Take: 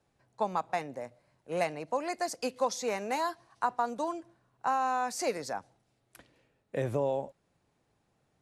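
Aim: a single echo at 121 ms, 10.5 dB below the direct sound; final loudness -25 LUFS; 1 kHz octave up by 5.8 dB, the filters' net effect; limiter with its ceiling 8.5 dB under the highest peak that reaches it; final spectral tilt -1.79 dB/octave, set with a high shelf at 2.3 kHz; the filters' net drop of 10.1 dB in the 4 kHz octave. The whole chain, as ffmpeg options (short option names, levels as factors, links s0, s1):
-af "equalizer=f=1000:t=o:g=9,highshelf=f=2300:g=-8.5,equalizer=f=4000:t=o:g=-5,alimiter=limit=0.106:level=0:latency=1,aecho=1:1:121:0.299,volume=2.11"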